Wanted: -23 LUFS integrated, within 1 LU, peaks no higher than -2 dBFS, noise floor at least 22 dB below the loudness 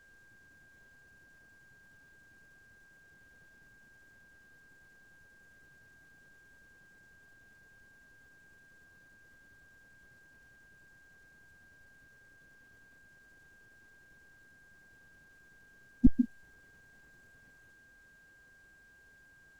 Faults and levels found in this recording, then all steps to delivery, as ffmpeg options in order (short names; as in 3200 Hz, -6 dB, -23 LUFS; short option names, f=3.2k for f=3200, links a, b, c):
steady tone 1600 Hz; tone level -59 dBFS; loudness -30.0 LUFS; peak -11.0 dBFS; loudness target -23.0 LUFS
-> -af "bandreject=f=1.6k:w=30"
-af "volume=7dB"